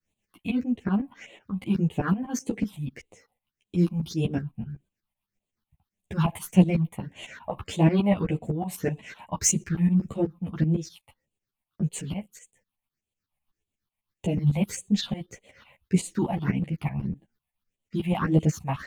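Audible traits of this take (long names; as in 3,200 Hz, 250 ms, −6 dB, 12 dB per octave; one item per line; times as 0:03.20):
phaser sweep stages 6, 1.7 Hz, lowest notch 370–1,500 Hz
tremolo saw up 8 Hz, depth 85%
a shimmering, thickened sound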